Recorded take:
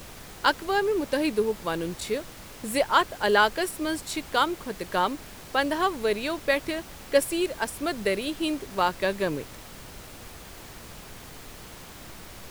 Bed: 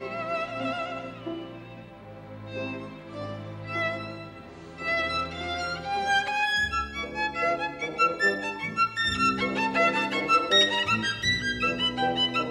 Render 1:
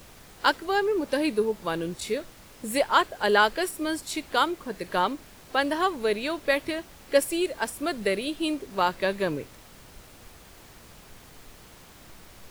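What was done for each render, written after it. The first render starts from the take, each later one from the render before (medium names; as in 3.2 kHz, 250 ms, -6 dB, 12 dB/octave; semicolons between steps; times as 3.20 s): noise print and reduce 6 dB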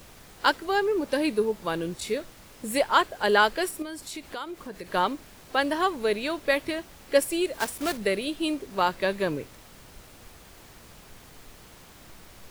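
3.82–4.94 s: compression 3:1, threshold -35 dBFS; 7.53–7.98 s: block-companded coder 3-bit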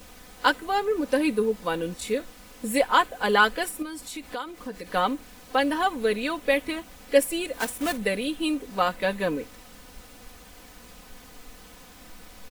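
comb 4 ms, depth 70%; dynamic bell 4.9 kHz, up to -5 dB, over -48 dBFS, Q 2.1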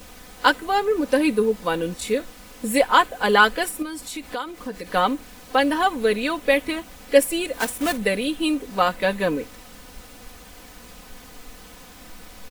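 trim +4 dB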